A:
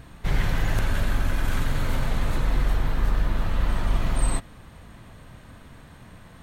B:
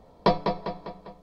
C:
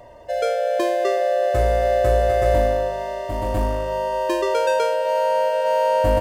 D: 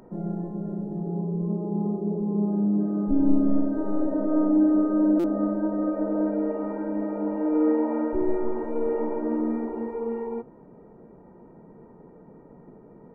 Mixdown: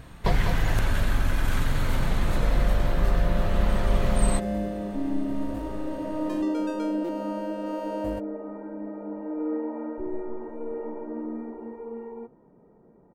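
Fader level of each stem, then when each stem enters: 0.0 dB, -8.0 dB, -16.0 dB, -7.5 dB; 0.00 s, 0.00 s, 2.00 s, 1.85 s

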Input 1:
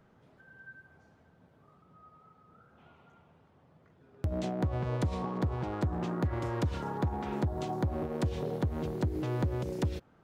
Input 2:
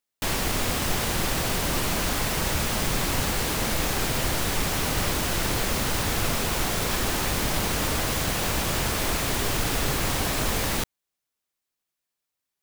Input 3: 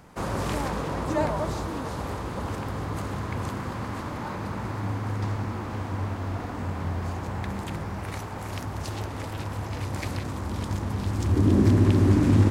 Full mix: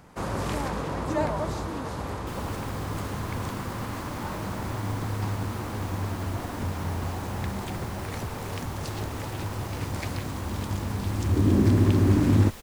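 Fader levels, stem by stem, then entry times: -8.5 dB, -18.0 dB, -1.0 dB; 0.00 s, 2.05 s, 0.00 s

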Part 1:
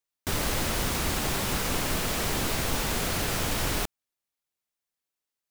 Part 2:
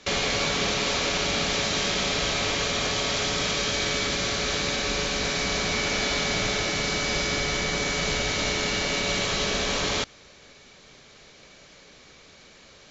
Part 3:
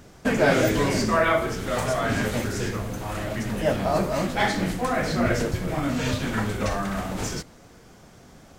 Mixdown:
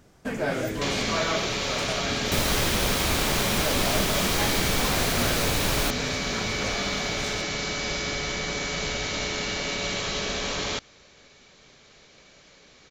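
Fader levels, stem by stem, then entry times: +2.0 dB, -3.0 dB, -8.0 dB; 2.05 s, 0.75 s, 0.00 s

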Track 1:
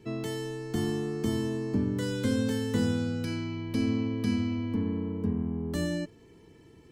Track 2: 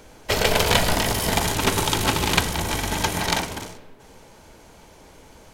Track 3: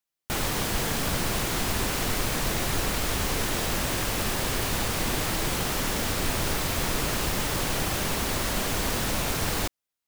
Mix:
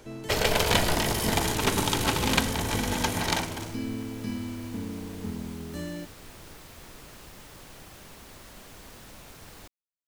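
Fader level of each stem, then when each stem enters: -5.5 dB, -4.5 dB, -20.0 dB; 0.00 s, 0.00 s, 0.00 s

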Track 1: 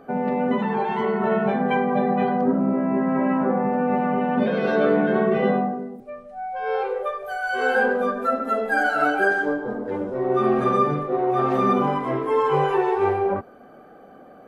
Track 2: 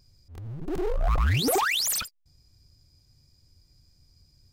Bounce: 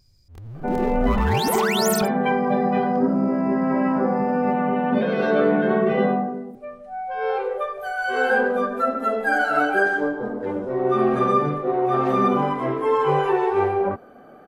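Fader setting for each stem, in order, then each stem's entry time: +0.5 dB, 0.0 dB; 0.55 s, 0.00 s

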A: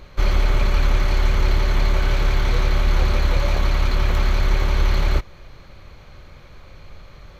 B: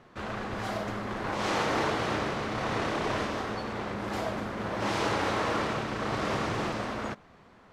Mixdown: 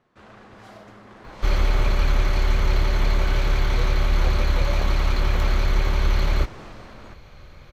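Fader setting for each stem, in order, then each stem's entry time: -2.0 dB, -11.5 dB; 1.25 s, 0.00 s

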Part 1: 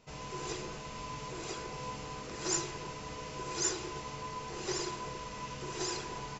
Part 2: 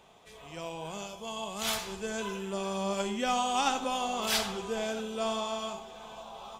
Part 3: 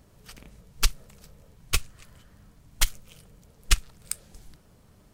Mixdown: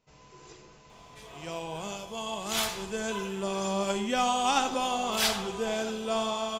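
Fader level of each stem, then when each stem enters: -11.5 dB, +2.5 dB, mute; 0.00 s, 0.90 s, mute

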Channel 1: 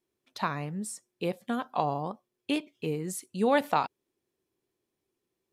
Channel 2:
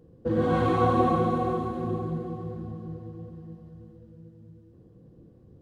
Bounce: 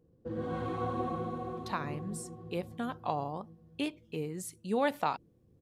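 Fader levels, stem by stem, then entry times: -5.0 dB, -12.0 dB; 1.30 s, 0.00 s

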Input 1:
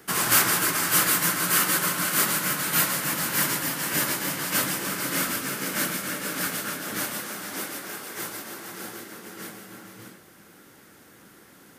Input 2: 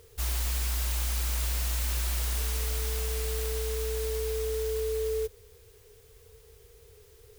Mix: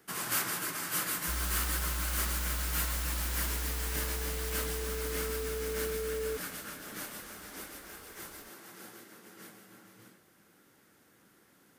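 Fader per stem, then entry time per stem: -12.0 dB, -5.5 dB; 0.00 s, 1.10 s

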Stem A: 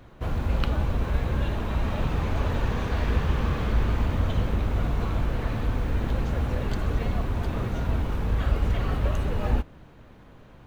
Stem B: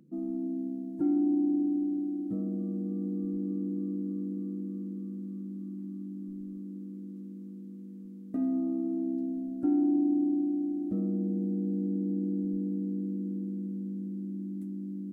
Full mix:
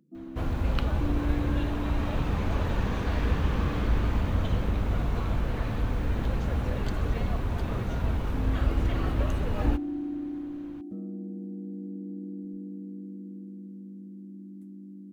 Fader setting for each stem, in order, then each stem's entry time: -2.0 dB, -7.0 dB; 0.15 s, 0.00 s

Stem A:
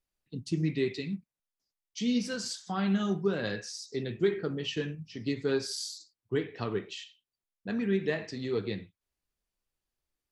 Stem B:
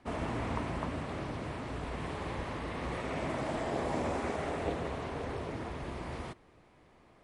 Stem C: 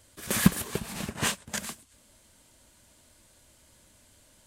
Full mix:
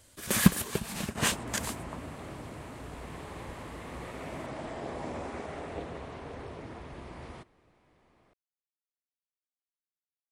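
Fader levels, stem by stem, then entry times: mute, -4.5 dB, 0.0 dB; mute, 1.10 s, 0.00 s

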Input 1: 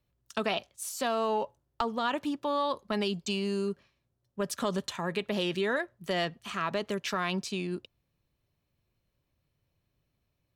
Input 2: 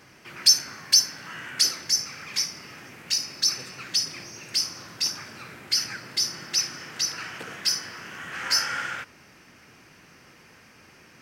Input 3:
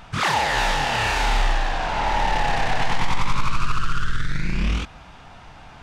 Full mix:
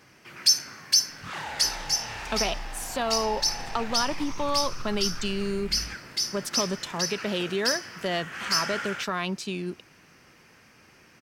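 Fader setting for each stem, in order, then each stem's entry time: +1.5 dB, -3.0 dB, -16.0 dB; 1.95 s, 0.00 s, 1.10 s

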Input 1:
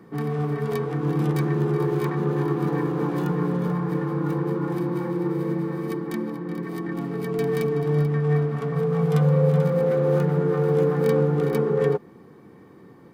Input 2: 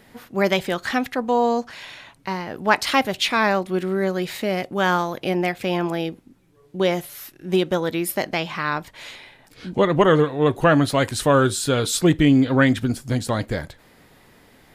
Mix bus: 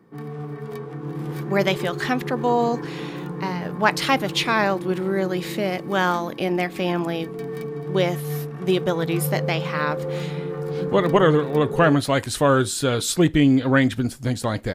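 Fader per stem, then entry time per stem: -7.0 dB, -1.0 dB; 0.00 s, 1.15 s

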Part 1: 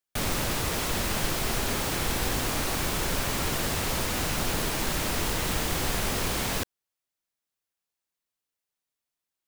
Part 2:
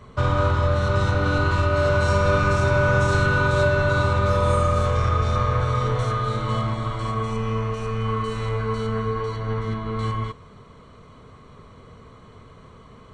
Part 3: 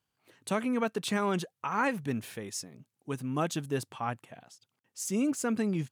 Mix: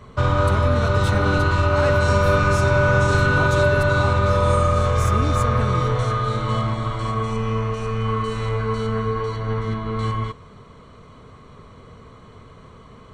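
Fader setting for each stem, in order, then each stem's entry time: mute, +2.0 dB, -0.5 dB; mute, 0.00 s, 0.00 s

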